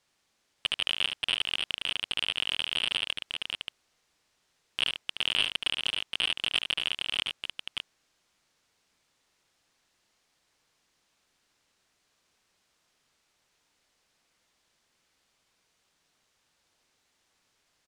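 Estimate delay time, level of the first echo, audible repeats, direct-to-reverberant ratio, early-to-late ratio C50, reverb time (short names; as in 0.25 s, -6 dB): 73 ms, -6.5 dB, 2, none, none, none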